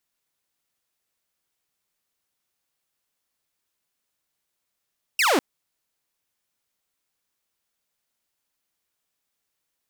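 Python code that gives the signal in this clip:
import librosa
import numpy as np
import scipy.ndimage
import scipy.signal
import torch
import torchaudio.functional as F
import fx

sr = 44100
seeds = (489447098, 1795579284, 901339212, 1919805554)

y = fx.laser_zap(sr, level_db=-14.5, start_hz=2900.0, end_hz=240.0, length_s=0.2, wave='saw')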